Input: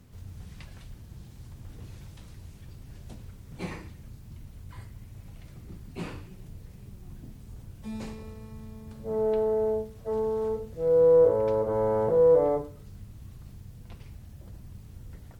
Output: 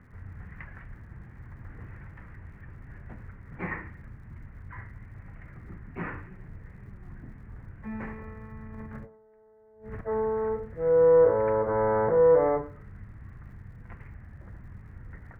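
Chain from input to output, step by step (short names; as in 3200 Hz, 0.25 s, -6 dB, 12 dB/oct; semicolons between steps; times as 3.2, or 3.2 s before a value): EQ curve 630 Hz 0 dB, 1900 Hz +13 dB, 3800 Hz -29 dB; crackle 110/s -60 dBFS; 8.62–10.01 negative-ratio compressor -49 dBFS, ratio -1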